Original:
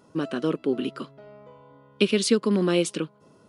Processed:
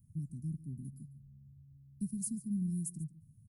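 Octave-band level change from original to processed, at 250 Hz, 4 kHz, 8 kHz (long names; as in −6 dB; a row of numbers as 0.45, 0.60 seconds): −13.5 dB, below −35 dB, −8.5 dB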